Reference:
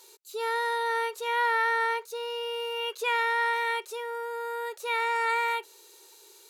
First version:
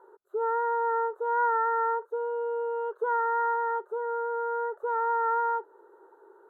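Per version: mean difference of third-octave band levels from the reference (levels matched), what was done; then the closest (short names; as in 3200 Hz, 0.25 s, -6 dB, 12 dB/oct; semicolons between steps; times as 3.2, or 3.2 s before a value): 10.0 dB: in parallel at +1.5 dB: compressor, threshold -36 dBFS, peak gain reduction 13.5 dB; on the sum: elliptic low-pass 1500 Hz, stop band 40 dB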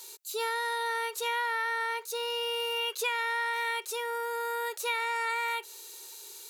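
4.0 dB: tilt +2 dB/oct; compressor, threshold -30 dBFS, peak gain reduction 9.5 dB; gain +2.5 dB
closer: second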